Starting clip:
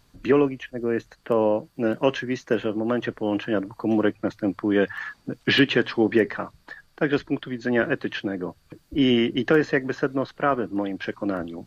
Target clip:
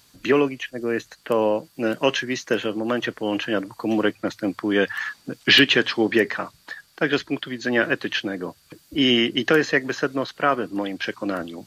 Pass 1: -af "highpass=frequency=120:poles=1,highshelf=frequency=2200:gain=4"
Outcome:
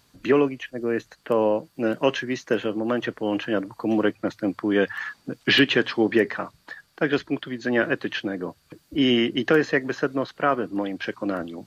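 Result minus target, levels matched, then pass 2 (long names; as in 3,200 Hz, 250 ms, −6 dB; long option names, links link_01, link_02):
4,000 Hz band −4.0 dB
-af "highpass=frequency=120:poles=1,highshelf=frequency=2200:gain=12.5"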